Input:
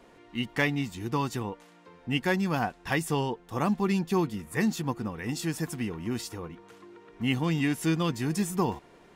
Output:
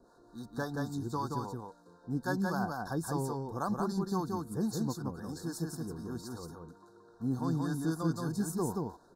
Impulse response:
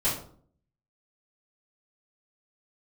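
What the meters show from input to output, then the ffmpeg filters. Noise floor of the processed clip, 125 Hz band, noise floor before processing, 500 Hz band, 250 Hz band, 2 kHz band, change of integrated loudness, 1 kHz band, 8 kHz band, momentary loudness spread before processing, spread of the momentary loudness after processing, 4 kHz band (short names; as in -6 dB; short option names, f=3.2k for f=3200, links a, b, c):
-61 dBFS, -4.5 dB, -56 dBFS, -5.5 dB, -5.0 dB, -11.5 dB, -6.0 dB, -4.5 dB, -5.0 dB, 11 LU, 12 LU, -12.5 dB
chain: -filter_complex "[0:a]asuperstop=centerf=2500:order=20:qfactor=1.2,acrossover=split=540[a][b];[a]aeval=exprs='val(0)*(1-0.7/2+0.7/2*cos(2*PI*3.7*n/s))':c=same[c];[b]aeval=exprs='val(0)*(1-0.7/2-0.7/2*cos(2*PI*3.7*n/s))':c=same[d];[c][d]amix=inputs=2:normalize=0,aecho=1:1:176:0.708,volume=-3.5dB"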